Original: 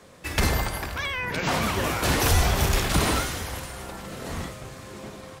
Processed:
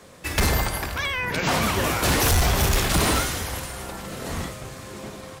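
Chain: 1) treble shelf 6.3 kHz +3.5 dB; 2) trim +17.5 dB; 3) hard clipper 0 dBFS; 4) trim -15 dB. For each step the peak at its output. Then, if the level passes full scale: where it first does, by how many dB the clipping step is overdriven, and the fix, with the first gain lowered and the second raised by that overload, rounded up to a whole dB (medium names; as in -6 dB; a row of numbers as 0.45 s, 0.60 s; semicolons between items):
-8.5 dBFS, +9.0 dBFS, 0.0 dBFS, -15.0 dBFS; step 2, 9.0 dB; step 2 +8.5 dB, step 4 -6 dB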